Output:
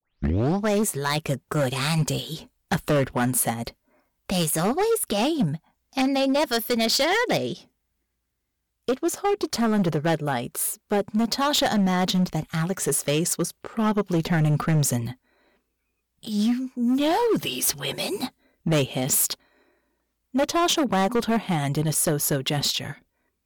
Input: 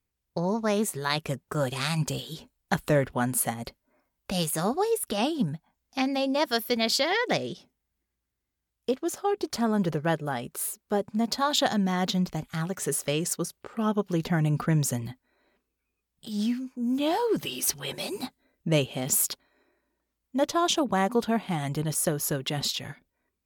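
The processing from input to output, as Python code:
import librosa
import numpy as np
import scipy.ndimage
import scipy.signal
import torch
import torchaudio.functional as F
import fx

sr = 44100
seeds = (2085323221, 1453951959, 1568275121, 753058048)

y = fx.tape_start_head(x, sr, length_s=0.65)
y = np.clip(10.0 ** (23.0 / 20.0) * y, -1.0, 1.0) / 10.0 ** (23.0 / 20.0)
y = F.gain(torch.from_numpy(y), 5.5).numpy()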